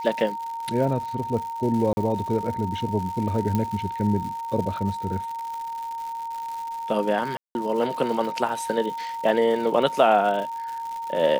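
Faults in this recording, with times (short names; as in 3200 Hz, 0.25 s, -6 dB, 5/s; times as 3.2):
crackle 220/s -32 dBFS
tone 920 Hz -29 dBFS
1.93–1.97 gap 40 ms
3.55 pop -12 dBFS
7.37–7.55 gap 0.181 s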